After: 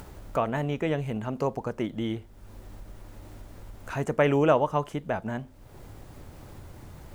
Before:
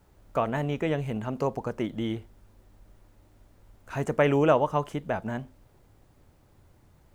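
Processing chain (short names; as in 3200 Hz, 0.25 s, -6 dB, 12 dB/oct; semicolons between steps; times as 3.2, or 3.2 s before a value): upward compressor, threshold -31 dBFS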